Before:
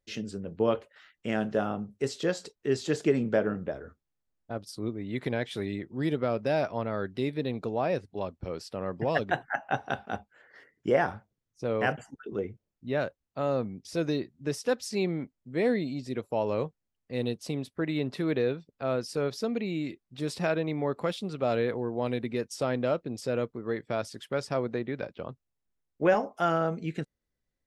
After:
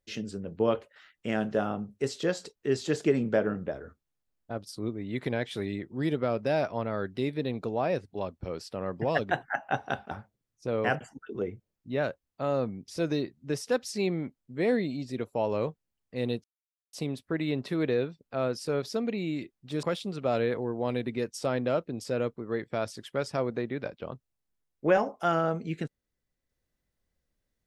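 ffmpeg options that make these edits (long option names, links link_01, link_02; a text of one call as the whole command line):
ffmpeg -i in.wav -filter_complex "[0:a]asplit=4[link_01][link_02][link_03][link_04];[link_01]atrim=end=10.112[link_05];[link_02]atrim=start=11.078:end=17.41,asetpts=PTS-STARTPTS,afade=type=out:start_time=6.328:duration=0.004:curve=hsin,apad=pad_dur=0.49[link_06];[link_03]atrim=start=17.41:end=20.312,asetpts=PTS-STARTPTS,afade=type=in:duration=0.004:curve=hsin[link_07];[link_04]atrim=start=20.998[link_08];[link_06][link_07]concat=n=2:v=0:a=1[link_09];[link_05][link_09]acrossfade=duration=0.004:curve1=hsin:curve2=hsin[link_10];[link_10][link_08]acrossfade=duration=0.004:curve1=hsin:curve2=hsin" out.wav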